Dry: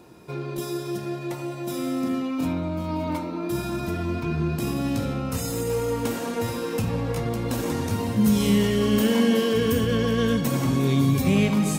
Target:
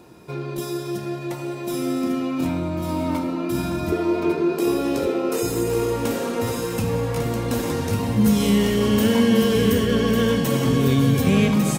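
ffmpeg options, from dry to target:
ffmpeg -i in.wav -filter_complex "[0:a]asettb=1/sr,asplit=3[link_01][link_02][link_03];[link_01]atrim=end=3.924[link_04];[link_02]atrim=start=3.92:end=5.43,asetpts=PTS-STARTPTS,afade=type=in:duration=0.004:curve=qsin,afade=type=out:start_time=1.506:duration=0.004:curve=qsin,highpass=frequency=400:width_type=q:width=4.9[link_05];[link_03]atrim=start=5.426[link_06];[link_04][link_05]acrossfade=duration=0.004:curve1=hsin:curve2=qsin[link_07];[link_07][link_06]acrossfade=duration=0.004:curve1=qsin:curve2=hsin,aecho=1:1:1149:0.501,volume=2dB" out.wav

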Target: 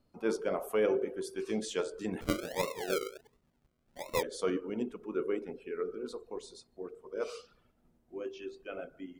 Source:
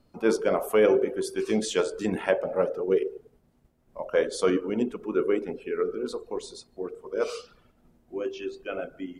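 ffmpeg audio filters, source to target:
ffmpeg -i in.wav -filter_complex "[0:a]asplit=3[link_01][link_02][link_03];[link_01]afade=type=out:start_time=2.2:duration=0.02[link_04];[link_02]acrusher=samples=39:mix=1:aa=0.000001:lfo=1:lforange=23.4:lforate=1.4,afade=type=in:start_time=2.2:duration=0.02,afade=type=out:start_time=4.21:duration=0.02[link_05];[link_03]afade=type=in:start_time=4.21:duration=0.02[link_06];[link_04][link_05][link_06]amix=inputs=3:normalize=0,volume=-8.5dB" out.wav

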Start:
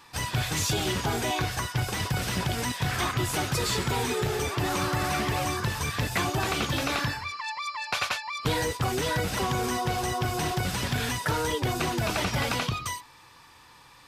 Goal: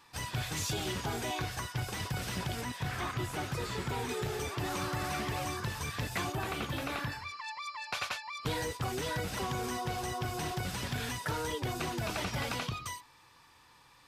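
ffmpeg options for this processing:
ffmpeg -i in.wav -filter_complex "[0:a]asettb=1/sr,asplit=3[link_01][link_02][link_03];[link_01]atrim=end=2.614[link_04];[link_02]atrim=start=2.61:end=4.09,asetpts=PTS-STARTPTS,afade=type=in:duration=0.004:curve=qsin,afade=type=out:start_time=1.476:duration=0.004:curve=qsin,acrossover=split=2700[link_05][link_06];[link_06]acompressor=threshold=-37dB:ratio=4:attack=1:release=60[link_07];[link_05][link_07]amix=inputs=2:normalize=0[link_08];[link_03]atrim=start=4.086[link_09];[link_04][link_08]acrossfade=duration=0.004:curve1=hsin:curve2=qsin[link_10];[link_10][link_09]acrossfade=duration=0.004:curve1=qsin:curve2=hsin,asettb=1/sr,asplit=3[link_11][link_12][link_13];[link_11]atrim=end=6.324[link_14];[link_12]atrim=start=6.32:end=7.12,asetpts=PTS-STARTPTS,afade=type=in:duration=0.004:curve=qsin,afade=type=out:start_time=0.796:duration=0.004:curve=qsin,equalizer=frequency=5700:width=1:gain=-7[link_15];[link_13]atrim=start=7.116[link_16];[link_14][link_15]acrossfade=duration=0.004:curve1=hsin:curve2=qsin[link_17];[link_17][link_16]acrossfade=duration=0.004:curve1=qsin:curve2=hsin,volume=-7.5dB" out.wav

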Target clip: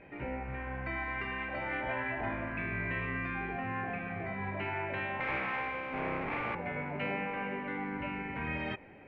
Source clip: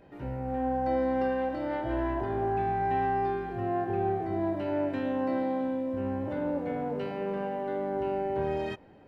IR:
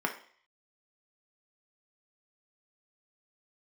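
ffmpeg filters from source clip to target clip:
-filter_complex "[0:a]asettb=1/sr,asplit=3[link_01][link_02][link_03];[link_01]atrim=end=5.204[link_04];[link_02]atrim=start=5.2:end=6.55,asetpts=PTS-STARTPTS,afade=type=in:duration=0.004:curve=qsin,afade=type=out:start_time=1.346:duration=0.004:curve=qsin,aeval=exprs='abs(val(0))':channel_layout=same[link_05];[link_03]atrim=start=6.546[link_06];[link_04][link_05]acrossfade=duration=0.004:curve1=hsin:curve2=qsin[link_07];[link_07][link_06]acrossfade=duration=0.004:curve1=qsin:curve2=hsin,lowpass=frequency=2300:width_type=q:width=6.5,afftfilt=real='re*lt(hypot(re,im),0.126)':imag='im*lt(hypot(re,im),0.126)':win_size=1024:overlap=0.75"

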